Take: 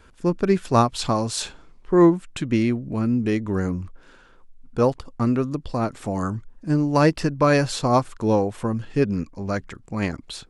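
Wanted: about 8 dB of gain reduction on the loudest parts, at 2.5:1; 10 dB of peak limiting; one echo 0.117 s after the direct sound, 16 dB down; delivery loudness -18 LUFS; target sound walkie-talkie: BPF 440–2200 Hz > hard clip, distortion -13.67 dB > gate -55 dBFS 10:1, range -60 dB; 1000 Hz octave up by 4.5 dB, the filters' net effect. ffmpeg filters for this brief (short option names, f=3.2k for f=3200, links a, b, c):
-af "equalizer=f=1k:t=o:g=6,acompressor=threshold=-21dB:ratio=2.5,alimiter=limit=-19.5dB:level=0:latency=1,highpass=440,lowpass=2.2k,aecho=1:1:117:0.158,asoftclip=type=hard:threshold=-26.5dB,agate=range=-60dB:threshold=-55dB:ratio=10,volume=18dB"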